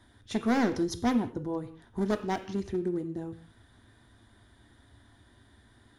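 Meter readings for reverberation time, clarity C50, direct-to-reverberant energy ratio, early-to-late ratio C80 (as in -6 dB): no single decay rate, 12.5 dB, 7.0 dB, 15.0 dB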